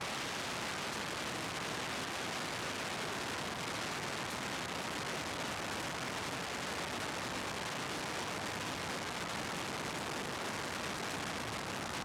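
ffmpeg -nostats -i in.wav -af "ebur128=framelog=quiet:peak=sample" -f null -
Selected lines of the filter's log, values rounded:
Integrated loudness:
  I:         -38.3 LUFS
  Threshold: -48.3 LUFS
Loudness range:
  LRA:         0.5 LU
  Threshold: -58.3 LUFS
  LRA low:   -38.5 LUFS
  LRA high:  -38.1 LUFS
Sample peak:
  Peak:      -28.6 dBFS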